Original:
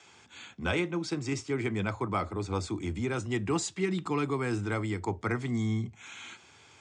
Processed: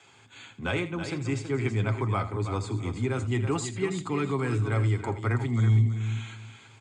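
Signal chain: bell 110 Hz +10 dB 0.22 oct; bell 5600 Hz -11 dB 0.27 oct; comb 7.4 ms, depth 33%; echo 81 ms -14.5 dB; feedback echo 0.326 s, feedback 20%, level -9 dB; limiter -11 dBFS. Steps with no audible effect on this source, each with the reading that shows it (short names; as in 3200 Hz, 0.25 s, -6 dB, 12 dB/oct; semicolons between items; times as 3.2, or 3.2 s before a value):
limiter -11 dBFS: input peak -14.0 dBFS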